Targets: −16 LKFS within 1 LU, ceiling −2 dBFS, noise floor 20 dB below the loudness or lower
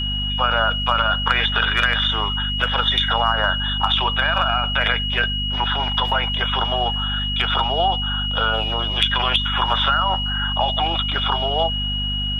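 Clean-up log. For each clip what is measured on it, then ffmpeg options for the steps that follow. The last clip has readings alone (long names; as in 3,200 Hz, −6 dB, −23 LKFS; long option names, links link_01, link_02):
mains hum 50 Hz; hum harmonics up to 250 Hz; level of the hum −24 dBFS; interfering tone 2,900 Hz; level of the tone −23 dBFS; integrated loudness −19.0 LKFS; sample peak −4.0 dBFS; target loudness −16.0 LKFS
→ -af "bandreject=frequency=50:width_type=h:width=6,bandreject=frequency=100:width_type=h:width=6,bandreject=frequency=150:width_type=h:width=6,bandreject=frequency=200:width_type=h:width=6,bandreject=frequency=250:width_type=h:width=6"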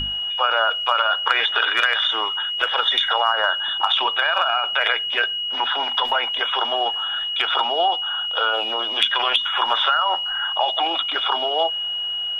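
mains hum none found; interfering tone 2,900 Hz; level of the tone −23 dBFS
→ -af "bandreject=frequency=2900:width=30"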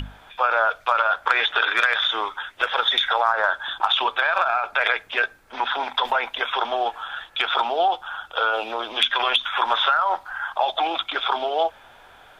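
interfering tone none found; integrated loudness −22.0 LKFS; sample peak −5.0 dBFS; target loudness −16.0 LKFS
→ -af "volume=6dB,alimiter=limit=-2dB:level=0:latency=1"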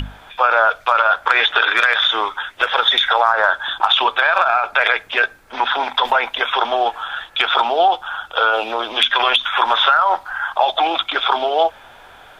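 integrated loudness −16.5 LKFS; sample peak −2.0 dBFS; background noise floor −44 dBFS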